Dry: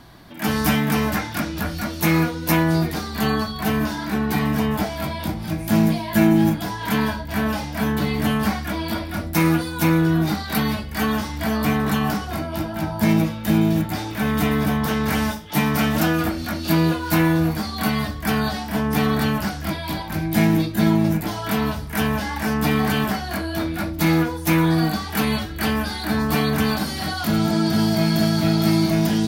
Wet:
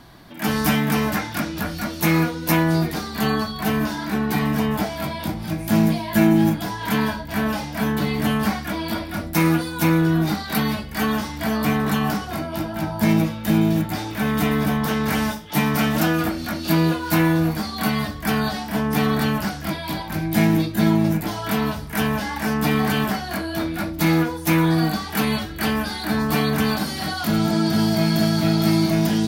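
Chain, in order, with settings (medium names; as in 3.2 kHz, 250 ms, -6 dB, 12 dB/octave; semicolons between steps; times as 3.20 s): peaking EQ 77 Hz -6.5 dB 0.43 oct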